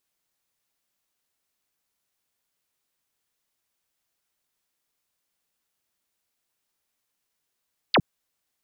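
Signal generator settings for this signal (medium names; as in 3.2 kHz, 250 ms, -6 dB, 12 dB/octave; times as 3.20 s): laser zap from 5.1 kHz, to 100 Hz, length 0.06 s sine, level -15 dB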